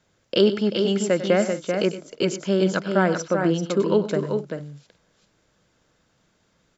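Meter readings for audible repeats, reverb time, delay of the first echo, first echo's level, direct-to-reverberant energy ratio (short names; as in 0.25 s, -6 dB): 3, none, 97 ms, -13.5 dB, none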